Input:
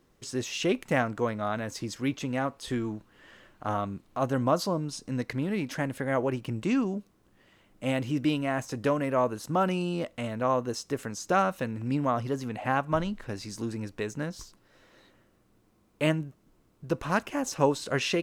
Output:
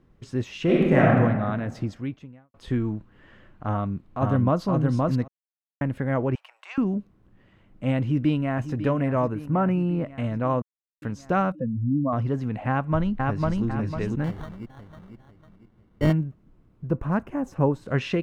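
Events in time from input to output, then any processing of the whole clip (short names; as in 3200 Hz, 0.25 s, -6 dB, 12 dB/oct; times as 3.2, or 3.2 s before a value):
0.63–1.14 reverb throw, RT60 1.4 s, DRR -5.5 dB
1.85–2.54 fade out quadratic
3.69–4.63 echo throw 0.52 s, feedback 10%, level -2 dB
5.28–5.81 mute
6.35–6.78 steep high-pass 680 Hz 48 dB/oct
8.02–8.72 echo throw 0.55 s, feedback 70%, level -11.5 dB
9.34–10.07 band shelf 4900 Hz -10 dB
10.62–11.02 mute
11.52–12.13 spectral contrast raised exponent 2.5
12.69–13.65 echo throw 0.5 s, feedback 40%, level -1.5 dB
14.24–16.13 sample-rate reducer 2500 Hz
16.87–17.88 bell 3700 Hz -12 dB 2 oct
whole clip: tone controls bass +10 dB, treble -15 dB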